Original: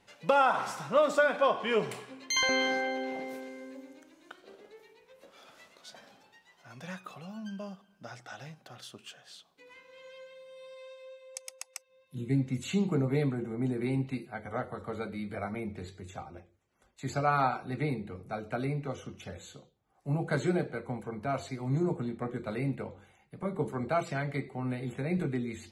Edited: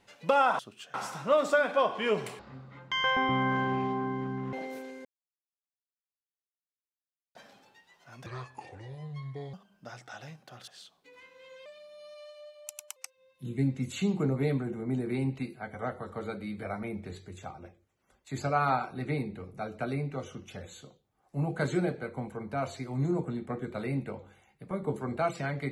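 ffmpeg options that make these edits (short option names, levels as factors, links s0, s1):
-filter_complex "[0:a]asplit=12[s0][s1][s2][s3][s4][s5][s6][s7][s8][s9][s10][s11];[s0]atrim=end=0.592[s12];[s1]atrim=start=8.858:end=9.212[s13];[s2]atrim=start=0.588:end=2.044[s14];[s3]atrim=start=2.04:end=3.11,asetpts=PTS-STARTPTS,asetrate=22050,aresample=44100[s15];[s4]atrim=start=3.106:end=3.63,asetpts=PTS-STARTPTS,afade=t=out:st=0.52:d=0.004:c=hsin[s16];[s5]atrim=start=3.63:end=5.93,asetpts=PTS-STARTPTS,volume=0[s17];[s6]atrim=start=5.93:end=6.844,asetpts=PTS-STARTPTS,afade=t=in:d=0.004:c=hsin[s18];[s7]atrim=start=6.84:end=7.72,asetpts=PTS-STARTPTS,asetrate=30429,aresample=44100,atrim=end_sample=56243,asetpts=PTS-STARTPTS[s19];[s8]atrim=start=7.716:end=8.862[s20];[s9]atrim=start=9.208:end=10.194[s21];[s10]atrim=start=10.19:end=11.68,asetpts=PTS-STARTPTS,asetrate=50274,aresample=44100,atrim=end_sample=57639,asetpts=PTS-STARTPTS[s22];[s11]atrim=start=11.676[s23];[s12][s13]acrossfade=d=0.004:c1=hsin:c2=hsin[s24];[s24][s14]acrossfade=d=0.004:c1=hsin:c2=hsin[s25];[s25][s15]acrossfade=d=0.004:c1=hsin:c2=hsin[s26];[s16][s17][s18]concat=n=3:v=0:a=1[s27];[s26][s27]acrossfade=d=0.004:c1=hsin:c2=hsin[s28];[s28][s19]acrossfade=d=0.004:c1=hsin:c2=hsin[s29];[s29][s20]acrossfade=d=0.004:c1=hsin:c2=hsin[s30];[s30][s21]acrossfade=d=0.004:c1=hsin:c2=hsin[s31];[s31][s22]acrossfade=d=0.004:c1=hsin:c2=hsin[s32];[s32][s23]acrossfade=d=0.004:c1=hsin:c2=hsin"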